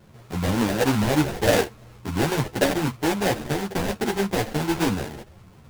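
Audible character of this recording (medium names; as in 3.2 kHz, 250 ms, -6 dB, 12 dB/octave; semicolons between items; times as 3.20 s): aliases and images of a low sample rate 1.2 kHz, jitter 20%; a shimmering, thickened sound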